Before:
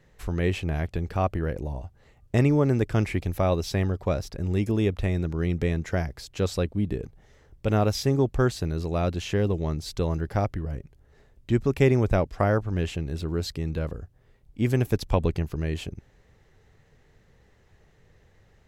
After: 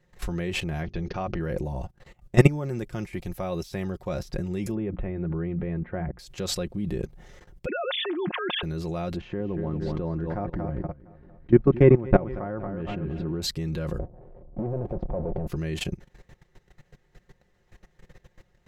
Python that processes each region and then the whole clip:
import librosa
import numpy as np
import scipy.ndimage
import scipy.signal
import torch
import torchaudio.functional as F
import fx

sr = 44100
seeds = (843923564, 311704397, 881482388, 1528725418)

y = fx.chain(x, sr, fx.brickwall_lowpass(high_hz=6700.0),
    fx.hum_notches(base_hz=50, count=8), at=(0.83, 1.4))
y = fx.chain(y, sr, fx.high_shelf(hz=8600.0, db=8.0),
    fx.upward_expand(threshold_db=-33.0, expansion=1.5), at=(2.4, 4.19))
y = fx.chain(y, sr, fx.gaussian_blur(sigma=4.2),
    fx.hum_notches(base_hz=60, count=5), at=(4.74, 6.19))
y = fx.chain(y, sr, fx.sine_speech(),
    fx.highpass(hz=730.0, slope=6),
    fx.sustainer(db_per_s=45.0), at=(7.66, 8.63))
y = fx.chain(y, sr, fx.lowpass(hz=1500.0, slope=12),
    fx.peak_eq(hz=280.0, db=7.0, octaves=0.29),
    fx.echo_warbled(ms=232, feedback_pct=36, rate_hz=2.8, cents=62, wet_db=-10.0), at=(9.16, 13.42))
y = fx.chain(y, sr, fx.power_curve(exponent=0.35),
    fx.lowpass_res(hz=620.0, q=2.5),
    fx.level_steps(step_db=21), at=(13.99, 15.47))
y = fx.level_steps(y, sr, step_db=19)
y = y + 0.54 * np.pad(y, (int(5.6 * sr / 1000.0), 0))[:len(y)]
y = fx.rider(y, sr, range_db=4, speed_s=2.0)
y = y * 10.0 ** (5.0 / 20.0)